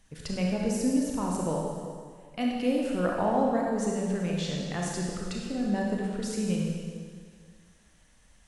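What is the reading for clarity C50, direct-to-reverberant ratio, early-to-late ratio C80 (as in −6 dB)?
−0.5 dB, −2.0 dB, 1.5 dB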